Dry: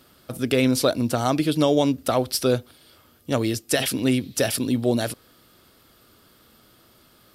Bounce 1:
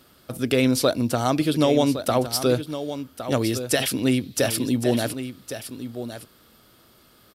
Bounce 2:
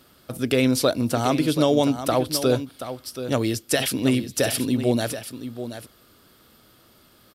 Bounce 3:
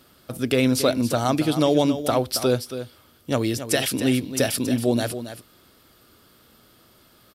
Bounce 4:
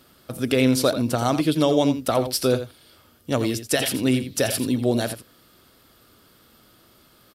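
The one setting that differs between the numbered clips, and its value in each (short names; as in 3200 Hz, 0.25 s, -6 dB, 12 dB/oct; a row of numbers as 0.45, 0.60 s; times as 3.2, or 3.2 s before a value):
echo, time: 1112, 729, 275, 85 ms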